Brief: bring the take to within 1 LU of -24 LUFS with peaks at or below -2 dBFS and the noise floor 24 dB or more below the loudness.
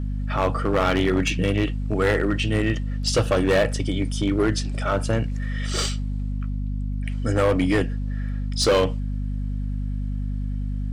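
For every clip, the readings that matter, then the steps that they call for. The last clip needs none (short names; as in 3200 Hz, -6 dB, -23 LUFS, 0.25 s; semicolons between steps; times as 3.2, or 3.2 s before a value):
clipped 1.9%; flat tops at -14.0 dBFS; hum 50 Hz; harmonics up to 250 Hz; hum level -24 dBFS; loudness -24.0 LUFS; peak -14.0 dBFS; loudness target -24.0 LUFS
-> clip repair -14 dBFS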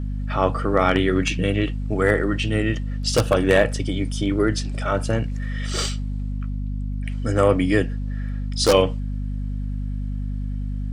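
clipped 0.0%; hum 50 Hz; harmonics up to 250 Hz; hum level -24 dBFS
-> notches 50/100/150/200/250 Hz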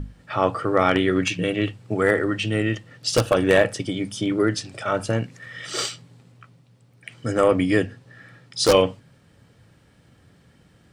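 hum none; loudness -22.5 LUFS; peak -4.0 dBFS; loudness target -24.0 LUFS
-> gain -1.5 dB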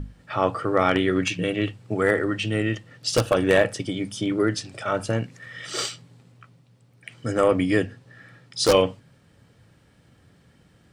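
loudness -24.0 LUFS; peak -5.5 dBFS; noise floor -58 dBFS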